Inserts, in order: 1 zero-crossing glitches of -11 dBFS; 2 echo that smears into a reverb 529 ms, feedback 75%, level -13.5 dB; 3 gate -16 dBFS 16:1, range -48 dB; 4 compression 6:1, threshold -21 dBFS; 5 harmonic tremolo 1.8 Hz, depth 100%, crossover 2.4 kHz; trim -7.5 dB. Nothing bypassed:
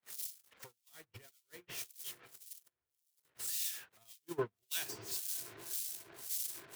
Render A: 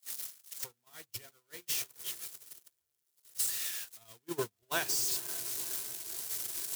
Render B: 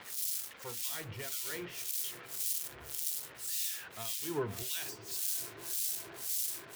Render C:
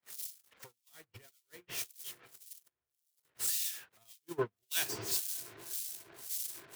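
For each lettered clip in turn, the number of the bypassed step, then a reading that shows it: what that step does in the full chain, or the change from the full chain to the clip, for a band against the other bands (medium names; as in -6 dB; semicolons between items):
5, momentary loudness spread change -3 LU; 3, momentary loudness spread change -14 LU; 4, momentary loudness spread change +3 LU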